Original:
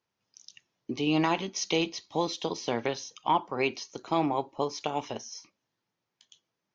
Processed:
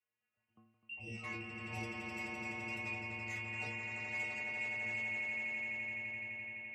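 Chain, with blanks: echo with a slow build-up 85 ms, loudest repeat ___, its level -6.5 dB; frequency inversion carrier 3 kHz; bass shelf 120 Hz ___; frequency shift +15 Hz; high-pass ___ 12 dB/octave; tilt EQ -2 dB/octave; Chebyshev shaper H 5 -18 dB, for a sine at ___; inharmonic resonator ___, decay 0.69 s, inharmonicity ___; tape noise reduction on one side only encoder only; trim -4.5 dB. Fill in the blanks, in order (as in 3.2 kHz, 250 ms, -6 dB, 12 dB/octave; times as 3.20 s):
8, +2.5 dB, 84 Hz, -11.5 dBFS, 110 Hz, 0.008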